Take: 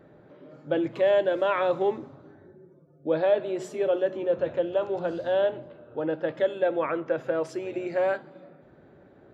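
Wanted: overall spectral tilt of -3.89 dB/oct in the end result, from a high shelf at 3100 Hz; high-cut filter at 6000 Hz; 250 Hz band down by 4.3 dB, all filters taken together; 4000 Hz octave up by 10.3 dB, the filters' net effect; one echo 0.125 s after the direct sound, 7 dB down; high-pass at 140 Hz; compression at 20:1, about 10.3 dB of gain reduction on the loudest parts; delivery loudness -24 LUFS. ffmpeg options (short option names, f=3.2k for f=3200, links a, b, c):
-af "highpass=140,lowpass=6k,equalizer=f=250:t=o:g=-7.5,highshelf=f=3.1k:g=8,equalizer=f=4k:t=o:g=8.5,acompressor=threshold=-28dB:ratio=20,aecho=1:1:125:0.447,volume=9.5dB"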